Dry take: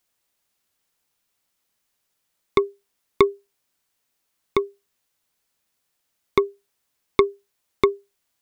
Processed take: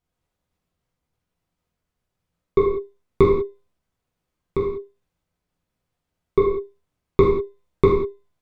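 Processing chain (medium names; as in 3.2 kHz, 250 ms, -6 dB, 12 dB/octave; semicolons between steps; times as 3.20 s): tilt EQ -4 dB/octave; level held to a coarse grid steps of 9 dB; feedback comb 510 Hz, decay 0.6 s, mix 30%; gated-style reverb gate 220 ms falling, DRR -5 dB; trim -1 dB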